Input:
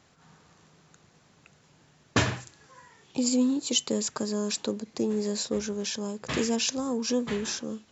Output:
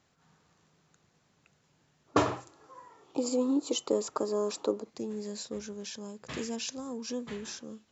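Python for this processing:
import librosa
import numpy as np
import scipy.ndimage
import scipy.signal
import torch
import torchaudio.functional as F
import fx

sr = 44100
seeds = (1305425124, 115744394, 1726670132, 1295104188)

y = fx.spec_box(x, sr, start_s=2.07, length_s=2.82, low_hz=270.0, high_hz=1400.0, gain_db=12)
y = y * 10.0 ** (-9.0 / 20.0)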